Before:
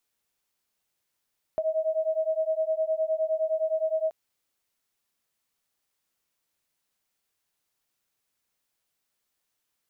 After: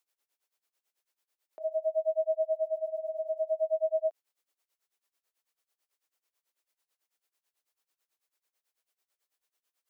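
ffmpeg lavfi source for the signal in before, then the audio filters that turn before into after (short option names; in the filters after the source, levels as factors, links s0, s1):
-f lavfi -i "aevalsrc='0.0447*(sin(2*PI*631*t)+sin(2*PI*640.7*t))':d=2.53:s=44100"
-af "highpass=f=330:w=0.5412,highpass=f=330:w=1.3066,tremolo=f=9.1:d=0.93"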